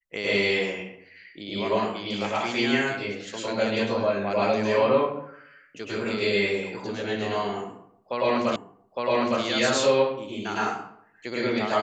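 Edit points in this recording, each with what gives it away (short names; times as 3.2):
8.56 repeat of the last 0.86 s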